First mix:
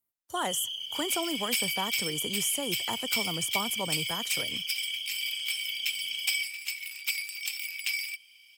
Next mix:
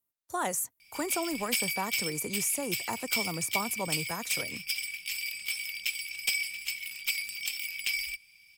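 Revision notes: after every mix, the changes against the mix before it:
first sound: muted; second sound: remove brick-wall FIR high-pass 690 Hz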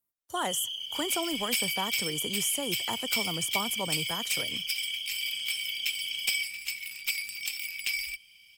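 first sound: unmuted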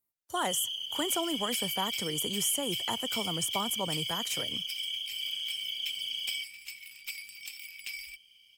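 second sound -9.0 dB

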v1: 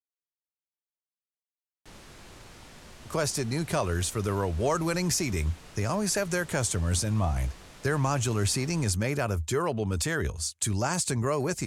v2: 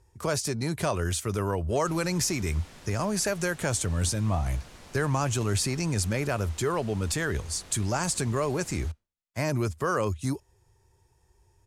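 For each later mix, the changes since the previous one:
speech: entry -2.90 s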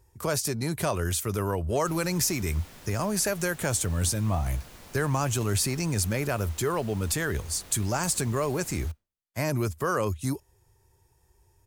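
master: remove low-pass 9 kHz 12 dB/octave

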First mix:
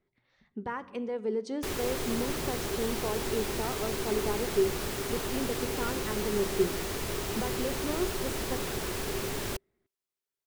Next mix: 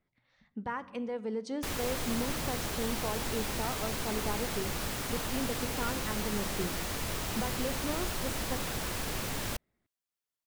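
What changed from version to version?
master: add peaking EQ 390 Hz -14.5 dB 0.26 oct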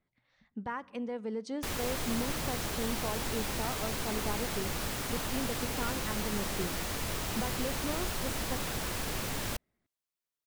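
speech: send -8.0 dB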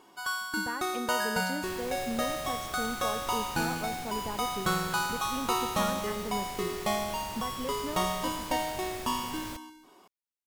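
first sound: unmuted; second sound -7.5 dB

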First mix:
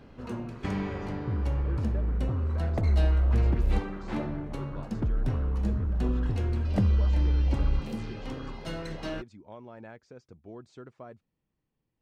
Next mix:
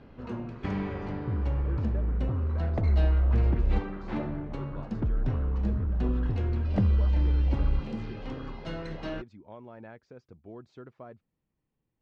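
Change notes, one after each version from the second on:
master: add distance through air 140 m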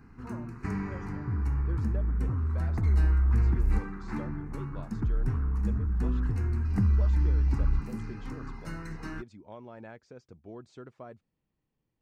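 background: add static phaser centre 1.4 kHz, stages 4; master: remove distance through air 140 m

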